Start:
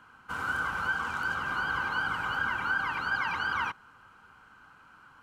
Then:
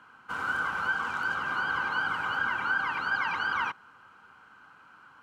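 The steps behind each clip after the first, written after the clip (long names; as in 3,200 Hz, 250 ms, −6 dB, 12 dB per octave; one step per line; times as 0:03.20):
high-pass filter 200 Hz 6 dB per octave
high-shelf EQ 8,000 Hz −8.5 dB
level +1.5 dB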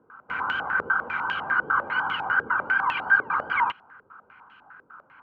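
low-pass on a step sequencer 10 Hz 450–2,900 Hz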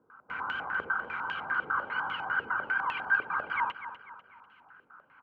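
repeating echo 247 ms, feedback 41%, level −12 dB
level −7 dB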